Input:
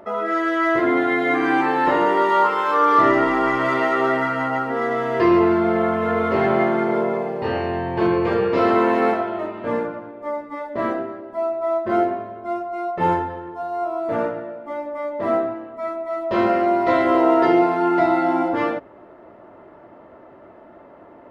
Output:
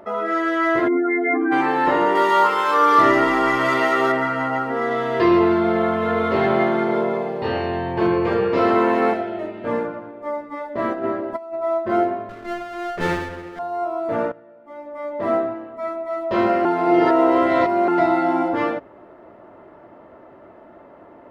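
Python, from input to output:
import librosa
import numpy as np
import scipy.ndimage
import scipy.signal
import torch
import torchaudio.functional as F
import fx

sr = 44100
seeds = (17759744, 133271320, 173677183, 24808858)

y = fx.spec_expand(x, sr, power=2.4, at=(0.87, 1.51), fade=0.02)
y = fx.high_shelf(y, sr, hz=3100.0, db=9.5, at=(2.15, 4.12))
y = fx.peak_eq(y, sr, hz=3700.0, db=7.0, octaves=0.5, at=(4.87, 7.93))
y = fx.peak_eq(y, sr, hz=1100.0, db=-14.5, octaves=0.49, at=(9.13, 9.65))
y = fx.over_compress(y, sr, threshold_db=-29.0, ratio=-0.5, at=(10.93, 11.58), fade=0.02)
y = fx.lower_of_two(y, sr, delay_ms=0.42, at=(12.29, 13.59))
y = fx.edit(y, sr, fx.fade_in_from(start_s=14.32, length_s=0.85, curve='qua', floor_db=-16.5),
    fx.reverse_span(start_s=16.65, length_s=1.23), tone=tone)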